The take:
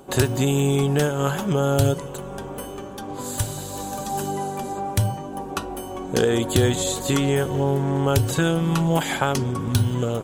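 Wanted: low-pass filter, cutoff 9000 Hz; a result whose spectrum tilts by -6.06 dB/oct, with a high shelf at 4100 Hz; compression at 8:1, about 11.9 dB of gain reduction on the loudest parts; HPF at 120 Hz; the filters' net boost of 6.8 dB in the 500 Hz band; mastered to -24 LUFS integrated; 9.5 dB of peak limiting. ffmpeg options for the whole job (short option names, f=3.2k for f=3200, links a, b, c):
-af "highpass=120,lowpass=9k,equalizer=f=500:t=o:g=8.5,highshelf=f=4.1k:g=-6.5,acompressor=threshold=-21dB:ratio=8,volume=4dB,alimiter=limit=-14dB:level=0:latency=1"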